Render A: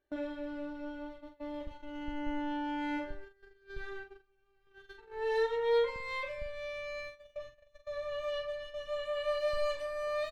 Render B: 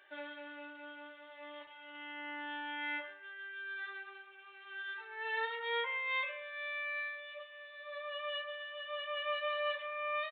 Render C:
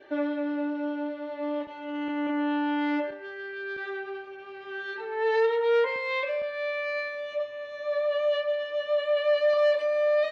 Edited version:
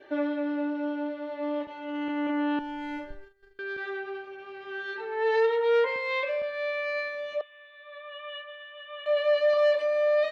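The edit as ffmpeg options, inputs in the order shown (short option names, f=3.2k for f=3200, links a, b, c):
-filter_complex "[2:a]asplit=3[a][b][c];[a]atrim=end=2.592[d];[0:a]atrim=start=2.588:end=3.592[e];[b]atrim=start=3.588:end=7.412[f];[1:a]atrim=start=7.408:end=9.062[g];[c]atrim=start=9.058[h];[d][e]acrossfade=d=0.004:c1=hsin:c2=hsin[i];[i][f]acrossfade=d=0.004:c1=hsin:c2=hsin[j];[j][g]acrossfade=d=0.004:c1=hsin:c2=hsin[k];[k][h]acrossfade=d=0.004:c1=hsin:c2=hsin"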